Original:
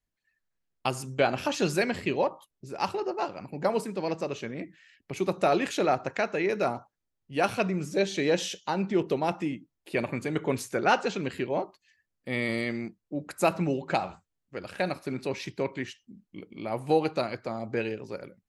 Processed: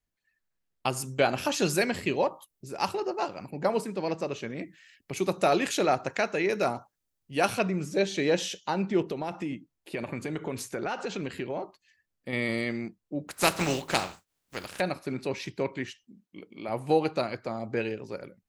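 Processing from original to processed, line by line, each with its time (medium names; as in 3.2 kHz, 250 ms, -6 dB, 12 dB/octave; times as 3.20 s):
0.96–3.51 s: treble shelf 7.7 kHz +11.5 dB
4.50–7.59 s: treble shelf 4.7 kHz +8.5 dB
9.01–12.33 s: compression, threshold -28 dBFS
13.28–14.79 s: spectral contrast reduction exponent 0.48
16.04–16.69 s: high-pass 260 Hz 6 dB/octave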